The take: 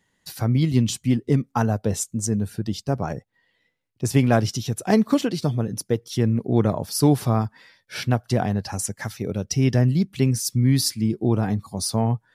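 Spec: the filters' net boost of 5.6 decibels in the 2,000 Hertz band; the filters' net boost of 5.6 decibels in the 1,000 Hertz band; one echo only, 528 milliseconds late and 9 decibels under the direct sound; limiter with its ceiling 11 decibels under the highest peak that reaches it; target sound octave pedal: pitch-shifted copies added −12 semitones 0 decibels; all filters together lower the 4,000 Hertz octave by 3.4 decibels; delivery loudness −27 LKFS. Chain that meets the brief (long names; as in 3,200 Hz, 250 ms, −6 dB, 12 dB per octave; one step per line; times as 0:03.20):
parametric band 1,000 Hz +7 dB
parametric band 2,000 Hz +6 dB
parametric band 4,000 Hz −6.5 dB
brickwall limiter −11.5 dBFS
single-tap delay 528 ms −9 dB
pitch-shifted copies added −12 semitones 0 dB
level −5.5 dB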